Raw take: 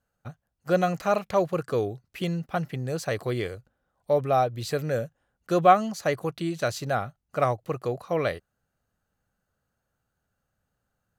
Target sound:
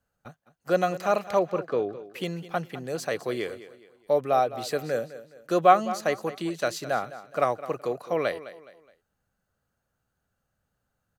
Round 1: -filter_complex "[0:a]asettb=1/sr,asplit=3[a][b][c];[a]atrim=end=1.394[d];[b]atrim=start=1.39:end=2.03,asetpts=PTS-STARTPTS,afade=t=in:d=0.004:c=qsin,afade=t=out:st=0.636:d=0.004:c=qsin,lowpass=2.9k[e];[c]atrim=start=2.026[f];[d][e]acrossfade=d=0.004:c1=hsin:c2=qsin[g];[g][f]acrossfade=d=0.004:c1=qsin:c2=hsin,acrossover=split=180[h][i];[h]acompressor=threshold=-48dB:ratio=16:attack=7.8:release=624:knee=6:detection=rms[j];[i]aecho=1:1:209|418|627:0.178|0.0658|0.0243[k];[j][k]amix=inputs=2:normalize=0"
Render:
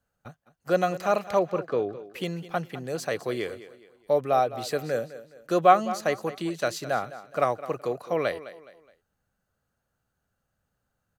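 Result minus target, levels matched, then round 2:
compressor: peak gain reduction -6 dB
-filter_complex "[0:a]asettb=1/sr,asplit=3[a][b][c];[a]atrim=end=1.394[d];[b]atrim=start=1.39:end=2.03,asetpts=PTS-STARTPTS,afade=t=in:d=0.004:c=qsin,afade=t=out:st=0.636:d=0.004:c=qsin,lowpass=2.9k[e];[c]atrim=start=2.026[f];[d][e]acrossfade=d=0.004:c1=hsin:c2=qsin[g];[g][f]acrossfade=d=0.004:c1=qsin:c2=hsin,acrossover=split=180[h][i];[h]acompressor=threshold=-54.5dB:ratio=16:attack=7.8:release=624:knee=6:detection=rms[j];[i]aecho=1:1:209|418|627:0.178|0.0658|0.0243[k];[j][k]amix=inputs=2:normalize=0"

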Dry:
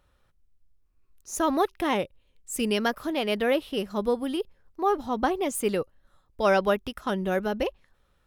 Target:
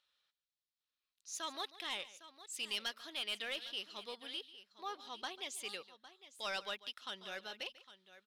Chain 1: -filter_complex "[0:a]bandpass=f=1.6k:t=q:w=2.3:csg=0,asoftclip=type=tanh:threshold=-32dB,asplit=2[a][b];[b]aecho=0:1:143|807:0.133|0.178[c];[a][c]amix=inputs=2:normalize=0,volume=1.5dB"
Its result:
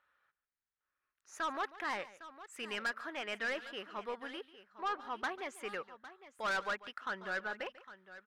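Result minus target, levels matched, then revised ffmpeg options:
4000 Hz band -9.5 dB
-filter_complex "[0:a]bandpass=f=3.9k:t=q:w=2.3:csg=0,asoftclip=type=tanh:threshold=-32dB,asplit=2[a][b];[b]aecho=0:1:143|807:0.133|0.178[c];[a][c]amix=inputs=2:normalize=0,volume=1.5dB"

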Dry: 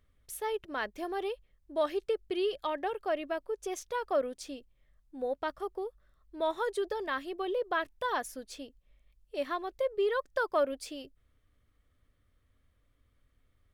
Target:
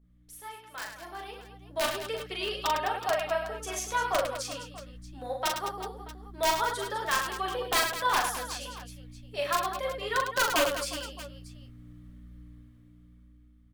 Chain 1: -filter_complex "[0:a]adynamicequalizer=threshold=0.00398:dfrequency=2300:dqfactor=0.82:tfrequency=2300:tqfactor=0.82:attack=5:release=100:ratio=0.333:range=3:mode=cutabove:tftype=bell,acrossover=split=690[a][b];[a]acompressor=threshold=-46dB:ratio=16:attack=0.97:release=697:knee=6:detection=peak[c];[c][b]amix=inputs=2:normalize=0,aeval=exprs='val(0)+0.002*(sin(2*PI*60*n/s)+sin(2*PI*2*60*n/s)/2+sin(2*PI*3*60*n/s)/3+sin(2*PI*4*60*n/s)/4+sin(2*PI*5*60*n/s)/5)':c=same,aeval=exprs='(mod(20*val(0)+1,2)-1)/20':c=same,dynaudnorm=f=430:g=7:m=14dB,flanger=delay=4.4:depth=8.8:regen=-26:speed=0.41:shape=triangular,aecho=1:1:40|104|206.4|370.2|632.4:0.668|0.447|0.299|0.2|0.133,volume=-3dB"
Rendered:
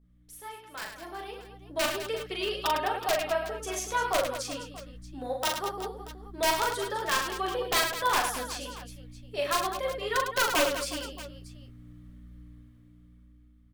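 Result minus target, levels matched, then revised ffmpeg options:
compressor: peak gain reduction -8.5 dB
-filter_complex "[0:a]adynamicequalizer=threshold=0.00398:dfrequency=2300:dqfactor=0.82:tfrequency=2300:tqfactor=0.82:attack=5:release=100:ratio=0.333:range=3:mode=cutabove:tftype=bell,acrossover=split=690[a][b];[a]acompressor=threshold=-55dB:ratio=16:attack=0.97:release=697:knee=6:detection=peak[c];[c][b]amix=inputs=2:normalize=0,aeval=exprs='val(0)+0.002*(sin(2*PI*60*n/s)+sin(2*PI*2*60*n/s)/2+sin(2*PI*3*60*n/s)/3+sin(2*PI*4*60*n/s)/4+sin(2*PI*5*60*n/s)/5)':c=same,aeval=exprs='(mod(20*val(0)+1,2)-1)/20':c=same,dynaudnorm=f=430:g=7:m=14dB,flanger=delay=4.4:depth=8.8:regen=-26:speed=0.41:shape=triangular,aecho=1:1:40|104|206.4|370.2|632.4:0.668|0.447|0.299|0.2|0.133,volume=-3dB"

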